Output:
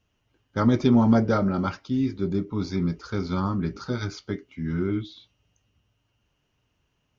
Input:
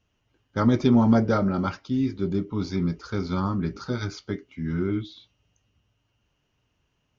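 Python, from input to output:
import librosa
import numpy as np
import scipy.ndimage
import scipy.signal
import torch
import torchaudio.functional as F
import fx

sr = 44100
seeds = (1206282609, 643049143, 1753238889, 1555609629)

y = fx.notch(x, sr, hz=3000.0, q=8.0, at=(2.18, 2.84))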